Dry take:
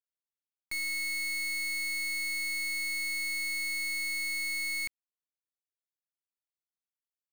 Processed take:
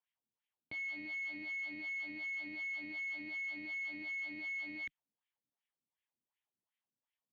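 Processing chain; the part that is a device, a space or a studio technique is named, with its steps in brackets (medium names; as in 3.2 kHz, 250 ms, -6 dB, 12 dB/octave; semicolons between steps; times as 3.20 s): resonant low shelf 220 Hz +13.5 dB, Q 1.5; wah-wah guitar rig (wah-wah 2.7 Hz 250–2200 Hz, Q 2.4; valve stage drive 54 dB, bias 0.6; cabinet simulation 100–3700 Hz, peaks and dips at 160 Hz -7 dB, 280 Hz +4 dB, 920 Hz +4 dB, 1.4 kHz -7 dB, 3.2 kHz +9 dB); trim +14.5 dB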